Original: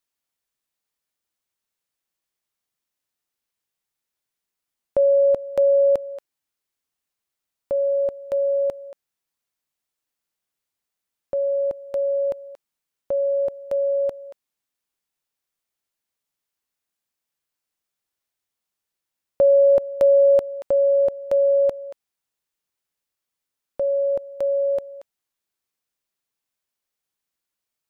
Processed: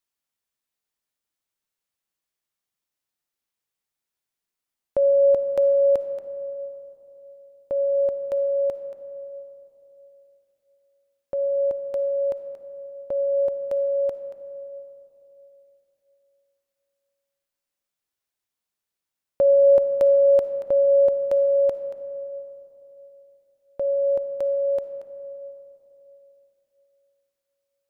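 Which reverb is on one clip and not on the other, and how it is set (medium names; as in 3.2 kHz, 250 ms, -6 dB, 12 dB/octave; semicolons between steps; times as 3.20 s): algorithmic reverb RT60 3.2 s, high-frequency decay 0.3×, pre-delay 15 ms, DRR 10.5 dB; trim -2.5 dB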